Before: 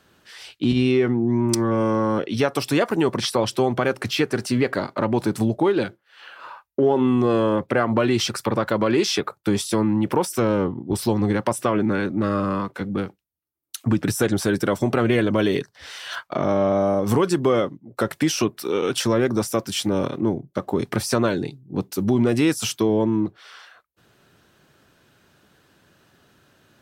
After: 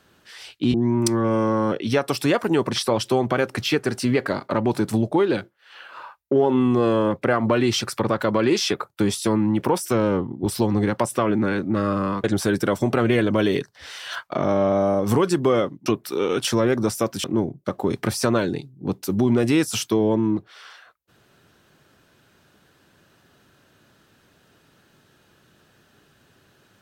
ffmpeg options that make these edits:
-filter_complex "[0:a]asplit=5[a][b][c][d][e];[a]atrim=end=0.742[f];[b]atrim=start=1.208:end=12.712[g];[c]atrim=start=14.238:end=17.862[h];[d]atrim=start=18.388:end=19.772[i];[e]atrim=start=20.128[j];[f][g]acrossfade=d=0.004:c1=hsin:c2=hsin[k];[k][h]acrossfade=d=0.004:c1=hsin:c2=hsin[l];[l][i]acrossfade=d=0.004:c1=hsin:c2=hsin[m];[m][j]acrossfade=d=0.004:c1=hsin:c2=hsin"

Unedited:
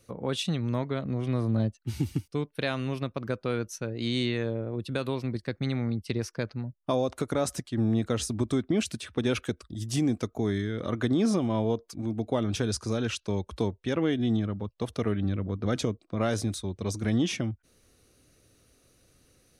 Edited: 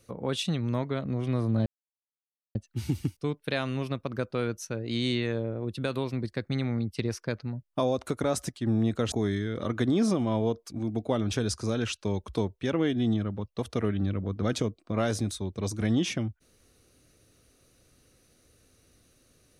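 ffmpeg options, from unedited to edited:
-filter_complex "[0:a]asplit=3[a][b][c];[a]atrim=end=1.66,asetpts=PTS-STARTPTS,afade=t=out:st=1.656:d=0.004:c=hsin,apad=pad_dur=0.89[d];[b]atrim=start=1.66:end=8.232,asetpts=PTS-STARTPTS,afade=t=in:d=0.004:c=hsin[e];[c]atrim=start=10.348[f];[d][e]concat=n=2:v=0:a=1[g];[g][f]acrossfade=d=0.004:c1=hsin:c2=hsin"

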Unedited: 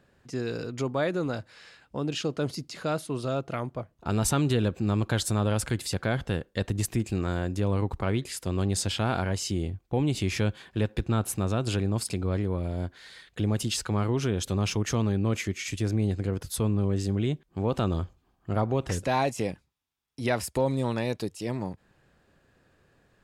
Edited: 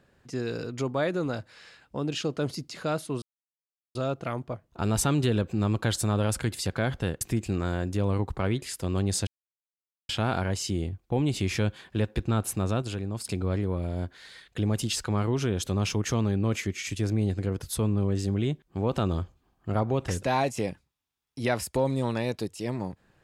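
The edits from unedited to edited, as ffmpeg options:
-filter_complex "[0:a]asplit=6[a][b][c][d][e][f];[a]atrim=end=3.22,asetpts=PTS-STARTPTS,afade=t=out:st=3.216:d=0.004:c=hsin,apad=pad_dur=0.73[g];[b]atrim=start=3.22:end=6.482,asetpts=PTS-STARTPTS,afade=t=in:d=0.004:c=hsin[h];[c]atrim=start=6.838:end=8.9,asetpts=PTS-STARTPTS,afade=t=out:st=2.058:d=0.004:c=hsin,apad=pad_dur=0.82[i];[d]atrim=start=8.9:end=11.632,asetpts=PTS-STARTPTS,afade=t=in:d=0.004:c=hsin[j];[e]atrim=start=11.628:end=12.062,asetpts=PTS-STARTPTS,volume=-5.5dB[k];[f]atrim=start=12.058[l];[g][h]concat=n=2:v=0:a=1[m];[i][j]concat=n=2:v=0:a=1[n];[m][n]acrossfade=d=0.004:c1=hsin:c2=hsin[o];[o][k]acrossfade=d=0.004:c1=hsin:c2=hsin[p];[p][l]acrossfade=d=0.004:c1=hsin:c2=hsin"

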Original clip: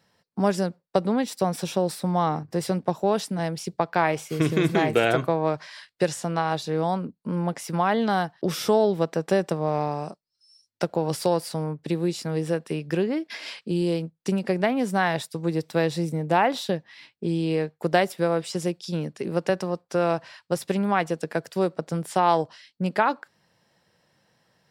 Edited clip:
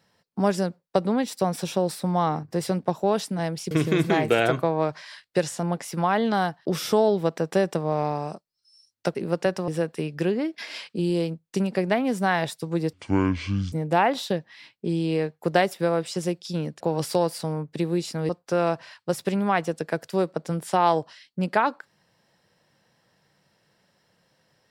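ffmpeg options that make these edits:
-filter_complex "[0:a]asplit=9[a][b][c][d][e][f][g][h][i];[a]atrim=end=3.712[j];[b]atrim=start=4.358:end=6.282[k];[c]atrim=start=7.388:end=10.912[l];[d]atrim=start=19.188:end=19.722[m];[e]atrim=start=12.398:end=15.654[n];[f]atrim=start=15.65:end=16.11,asetpts=PTS-STARTPTS,asetrate=25578,aresample=44100[o];[g]atrim=start=16.106:end=19.192[p];[h]atrim=start=10.908:end=12.402[q];[i]atrim=start=19.718[r];[j][k]acrossfade=d=0.004:c1=hsin:c2=hsin[s];[s][l]acrossfade=d=0.004:c1=hsin:c2=hsin[t];[t][m]acrossfade=d=0.004:c1=hsin:c2=hsin[u];[u][n]acrossfade=d=0.004:c1=hsin:c2=hsin[v];[v][o]acrossfade=d=0.004:c1=hsin:c2=hsin[w];[w][p]acrossfade=d=0.004:c1=hsin:c2=hsin[x];[x][q]acrossfade=d=0.004:c1=hsin:c2=hsin[y];[y][r]acrossfade=d=0.004:c1=hsin:c2=hsin"

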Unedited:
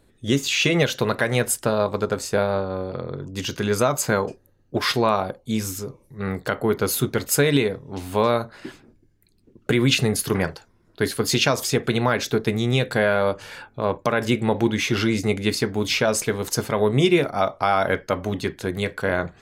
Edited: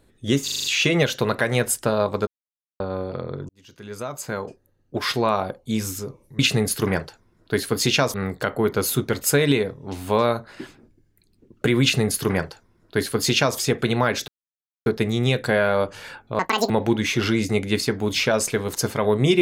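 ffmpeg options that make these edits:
-filter_complex "[0:a]asplit=14[a][b][c][d][e][f][g][h][i][j][k][l][m][n];[a]atrim=end=0.482[o];[b]atrim=start=0.438:end=0.482[p];[c]atrim=start=0.438:end=0.482[q];[d]atrim=start=0.438:end=0.482[r];[e]atrim=start=0.438:end=0.482[s];[f]atrim=start=0.438:end=2.07,asetpts=PTS-STARTPTS,afade=t=out:st=1.628:d=0.004:c=hsin[t];[g]atrim=start=2.07:end=2.6,asetpts=PTS-STARTPTS,volume=0[u];[h]atrim=start=2.6:end=3.29,asetpts=PTS-STARTPTS,afade=t=in:d=0.004:c=hsin,afade=t=out:st=0.686:d=0.004:c=hsin[v];[i]atrim=start=3.29:end=6.192,asetpts=PTS-STARTPTS,afade=t=in:d=2.06[w];[j]atrim=start=9.868:end=11.622[x];[k]atrim=start=6.188:end=12.33,asetpts=PTS-STARTPTS,afade=t=out:st=6.138:d=0.004:c=hsin,apad=pad_dur=0.58[y];[l]atrim=start=12.33:end=13.864,asetpts=PTS-STARTPTS,afade=t=in:d=0.004:c=hsin[z];[m]atrim=start=13.86:end=14.44,asetpts=PTS-STARTPTS,asetrate=82908,aresample=44100,atrim=end_sample=13605,asetpts=PTS-STARTPTS[aa];[n]atrim=start=14.436[ab];[o][p]acrossfade=d=0.004:c1=hsin:c2=hsin[ac];[ac][q]acrossfade=d=0.004:c1=hsin:c2=hsin[ad];[ad][r]acrossfade=d=0.004:c1=hsin:c2=hsin[ae];[ae][s]acrossfade=d=0.004:c1=hsin:c2=hsin[af];[t][u][v][w]concat=n=4:v=0:a=1[ag];[af][ag]acrossfade=d=0.004:c1=hsin:c2=hsin[ah];[ah][x]acrossfade=d=0.004:c1=hsin:c2=hsin[ai];[y][z]concat=n=2:v=0:a=1[aj];[ai][aj]acrossfade=d=0.004:c1=hsin:c2=hsin[ak];[ak][aa]acrossfade=d=0.004:c1=hsin:c2=hsin[al];[al][ab]acrossfade=d=0.004:c1=hsin:c2=hsin"

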